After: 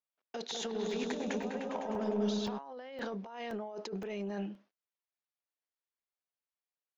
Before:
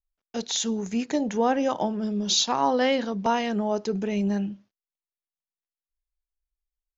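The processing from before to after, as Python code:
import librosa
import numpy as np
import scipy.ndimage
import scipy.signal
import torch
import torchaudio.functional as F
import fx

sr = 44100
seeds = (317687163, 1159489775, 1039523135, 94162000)

y = scipy.signal.sosfilt(scipy.signal.butter(2, 380.0, 'highpass', fs=sr, output='sos'), x)
y = fx.high_shelf(y, sr, hz=4200.0, db=-9.5)
y = fx.over_compress(y, sr, threshold_db=-36.0, ratio=-1.0)
y = 10.0 ** (-23.0 / 20.0) * np.tanh(y / 10.0 ** (-23.0 / 20.0))
y = fx.air_absorb(y, sr, metres=51.0)
y = fx.echo_opening(y, sr, ms=101, hz=750, octaves=1, feedback_pct=70, wet_db=0, at=(0.51, 2.57), fade=0.02)
y = fx.buffer_crackle(y, sr, first_s=0.91, period_s=0.52, block=64, kind='zero')
y = y * 10.0 ** (-4.0 / 20.0)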